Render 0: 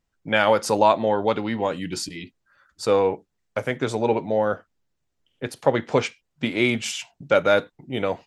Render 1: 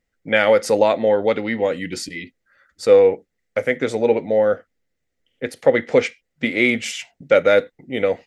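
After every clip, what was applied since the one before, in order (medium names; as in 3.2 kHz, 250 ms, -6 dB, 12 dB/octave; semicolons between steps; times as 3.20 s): graphic EQ with 31 bands 125 Hz -6 dB, 250 Hz +4 dB, 500 Hz +9 dB, 1 kHz -9 dB, 2 kHz +11 dB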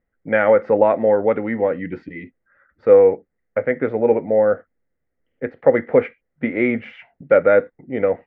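low-pass 1.8 kHz 24 dB/octave; trim +1 dB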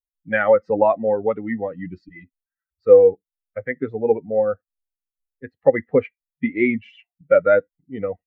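expander on every frequency bin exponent 2; trim +2.5 dB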